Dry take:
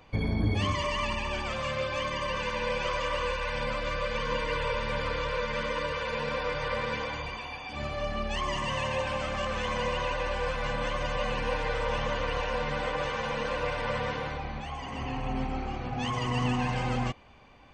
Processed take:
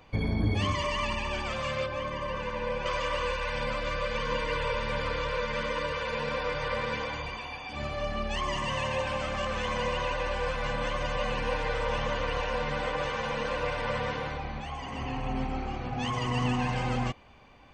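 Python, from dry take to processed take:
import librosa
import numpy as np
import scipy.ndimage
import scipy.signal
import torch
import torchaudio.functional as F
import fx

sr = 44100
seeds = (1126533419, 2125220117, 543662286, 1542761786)

y = fx.high_shelf(x, sr, hz=2200.0, db=-11.0, at=(1.86, 2.86))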